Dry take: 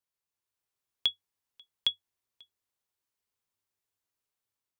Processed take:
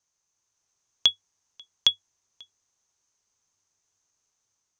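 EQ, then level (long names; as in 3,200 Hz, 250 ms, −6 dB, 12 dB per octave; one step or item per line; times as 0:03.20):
low-pass with resonance 6,300 Hz, resonance Q 11
low-shelf EQ 300 Hz +5.5 dB
parametric band 1,000 Hz +5 dB 1.6 octaves
+4.5 dB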